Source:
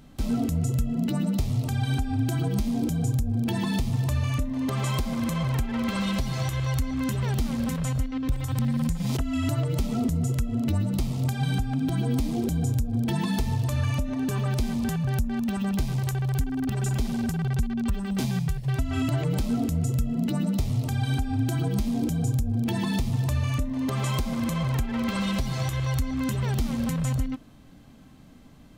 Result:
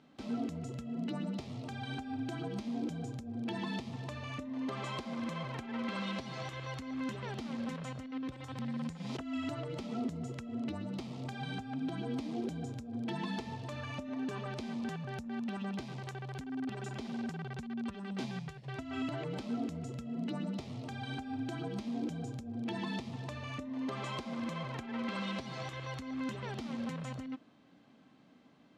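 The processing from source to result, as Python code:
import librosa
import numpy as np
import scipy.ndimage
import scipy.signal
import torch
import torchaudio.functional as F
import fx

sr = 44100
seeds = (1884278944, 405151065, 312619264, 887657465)

y = fx.bandpass_edges(x, sr, low_hz=240.0, high_hz=4200.0)
y = y * 10.0 ** (-7.0 / 20.0)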